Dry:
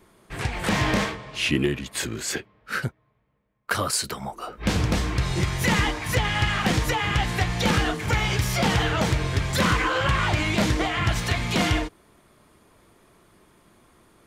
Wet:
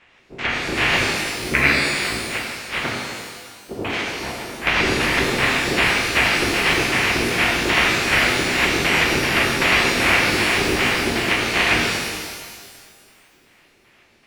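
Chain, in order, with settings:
ceiling on every frequency bin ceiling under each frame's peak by 28 dB
formants moved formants −4 semitones
auto-filter low-pass square 2.6 Hz 380–2,400 Hz
reverb with rising layers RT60 1.8 s, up +12 semitones, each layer −8 dB, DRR −2.5 dB
level −1 dB

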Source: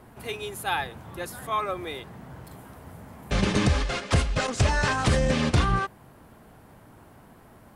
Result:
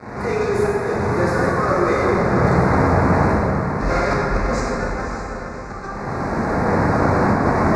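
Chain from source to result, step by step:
camcorder AGC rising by 25 dB per second
high-pass filter 120 Hz 6 dB per octave
high-shelf EQ 4,200 Hz −7 dB
gate with flip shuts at −17 dBFS, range −32 dB
in parallel at −11.5 dB: fuzz pedal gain 51 dB, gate −49 dBFS
on the sum: Butterworth band-reject 3,100 Hz, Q 1.4
high-frequency loss of the air 130 metres
on a send: feedback delay with all-pass diffusion 573 ms, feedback 47%, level −8.5 dB
on the sum: dense smooth reverb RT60 3 s, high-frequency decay 0.5×, DRR −5.5 dB
level −1 dB

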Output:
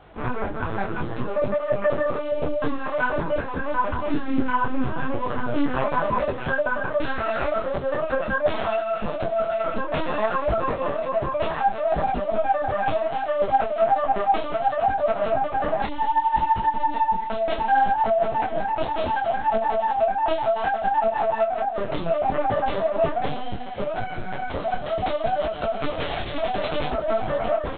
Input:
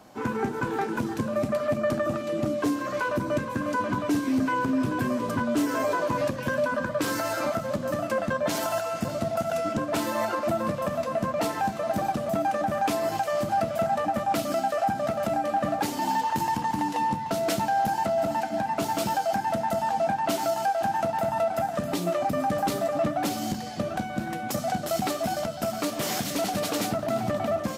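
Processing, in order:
linear-prediction vocoder at 8 kHz pitch kept
low-shelf EQ 360 Hz −4.5 dB
micro pitch shift up and down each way 23 cents
level +8.5 dB

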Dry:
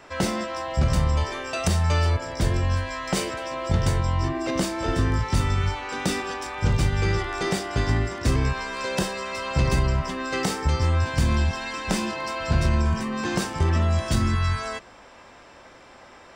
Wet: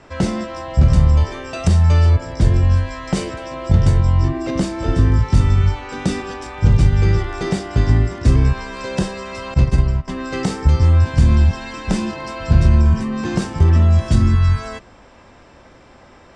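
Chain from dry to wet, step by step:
low-pass filter 9,200 Hz 24 dB per octave
low-shelf EQ 330 Hz +11.5 dB
0:09.54–0:10.08: expander for the loud parts 2.5 to 1, over −18 dBFS
level −1 dB

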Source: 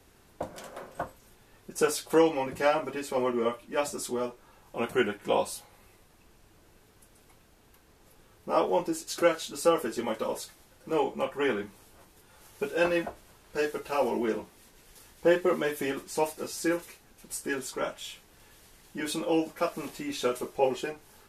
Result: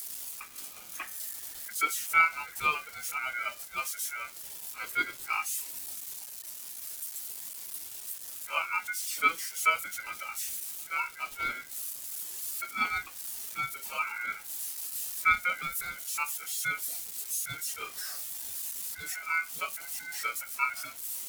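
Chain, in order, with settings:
spike at every zero crossing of −18.5 dBFS
0:00.93–0:01.73: low-shelf EQ 410 Hz +11 dB
ring modulation 1,800 Hz
every bin expanded away from the loudest bin 1.5 to 1

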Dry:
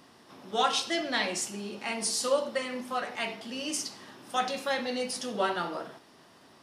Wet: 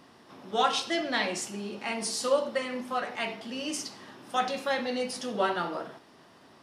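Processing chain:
high-shelf EQ 4,400 Hz −6 dB
level +1.5 dB

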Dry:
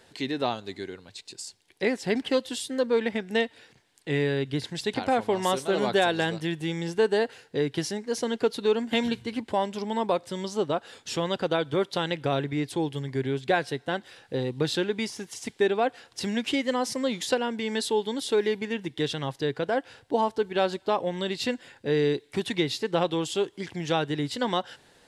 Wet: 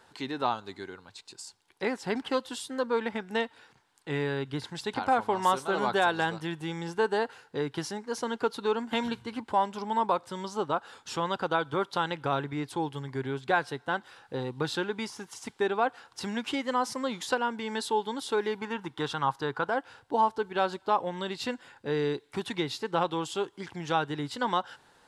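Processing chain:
flat-topped bell 1,100 Hz +9.5 dB 1.1 octaves, from 0:18.57 +16 dB, from 0:19.68 +8 dB
level −5 dB

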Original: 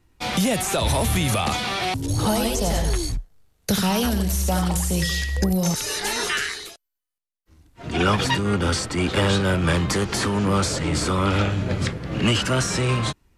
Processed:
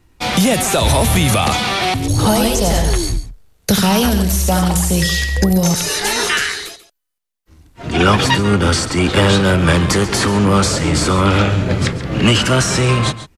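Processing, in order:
single-tap delay 138 ms −14 dB
level +7.5 dB

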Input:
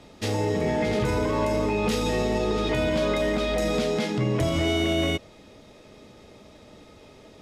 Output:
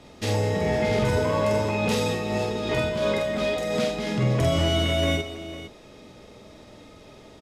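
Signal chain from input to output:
0:02.03–0:04.07: amplitude tremolo 2.8 Hz, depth 54%
multi-tap delay 47/204/503 ms −3/−14/−13 dB

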